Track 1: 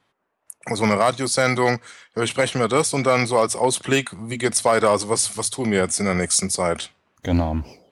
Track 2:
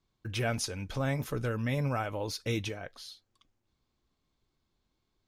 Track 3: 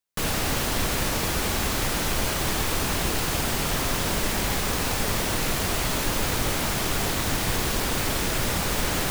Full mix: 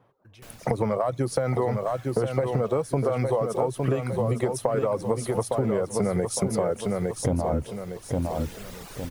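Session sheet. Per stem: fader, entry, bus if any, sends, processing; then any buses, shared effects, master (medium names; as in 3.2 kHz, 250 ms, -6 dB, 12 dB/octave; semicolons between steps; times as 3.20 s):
+1.5 dB, 0.00 s, no send, echo send -6.5 dB, reverb removal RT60 0.56 s; ten-band graphic EQ 125 Hz +12 dB, 500 Hz +9 dB, 1 kHz +3 dB, 2 kHz -5 dB, 4 kHz -10 dB, 8 kHz -12 dB; compression, threshold -17 dBFS, peak gain reduction 11 dB
-15.0 dB, 0.00 s, no send, no echo send, peak limiter -28 dBFS, peak gain reduction 10 dB
-14.0 dB, 0.25 s, no send, echo send -12 dB, reverb removal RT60 1.7 s; auto duck -18 dB, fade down 1.15 s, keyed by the first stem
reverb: none
echo: feedback delay 859 ms, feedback 35%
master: compression, threshold -21 dBFS, peak gain reduction 9 dB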